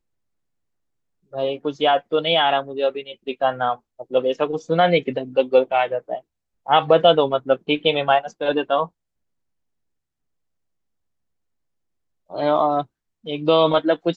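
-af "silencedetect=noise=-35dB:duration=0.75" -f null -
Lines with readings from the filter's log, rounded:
silence_start: 0.00
silence_end: 1.33 | silence_duration: 1.33
silence_start: 8.86
silence_end: 12.30 | silence_duration: 3.44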